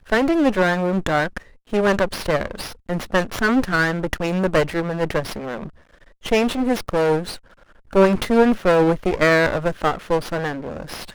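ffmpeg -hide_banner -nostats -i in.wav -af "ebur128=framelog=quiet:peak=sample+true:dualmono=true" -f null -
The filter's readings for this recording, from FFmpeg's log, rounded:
Integrated loudness:
  I:         -17.2 LUFS
  Threshold: -27.8 LUFS
Loudness range:
  LRA:         4.1 LU
  Threshold: -37.8 LUFS
  LRA low:   -19.8 LUFS
  LRA high:  -15.7 LUFS
Sample peak:
  Peak:       -2.1 dBFS
True peak:
  Peak:       -2.1 dBFS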